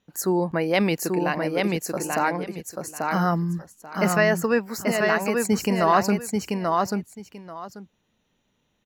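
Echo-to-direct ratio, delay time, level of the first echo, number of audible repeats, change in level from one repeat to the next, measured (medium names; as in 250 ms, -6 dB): -3.5 dB, 837 ms, -3.5 dB, 2, -14.5 dB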